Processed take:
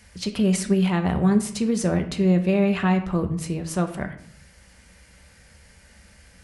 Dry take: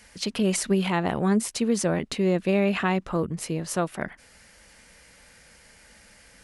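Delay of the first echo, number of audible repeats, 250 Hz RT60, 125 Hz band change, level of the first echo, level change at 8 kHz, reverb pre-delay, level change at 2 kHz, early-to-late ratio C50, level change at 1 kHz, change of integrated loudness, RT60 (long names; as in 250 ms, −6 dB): no echo audible, no echo audible, 0.75 s, +5.5 dB, no echo audible, −1.5 dB, 5 ms, −1.0 dB, 11.0 dB, 0.0 dB, +3.0 dB, 0.65 s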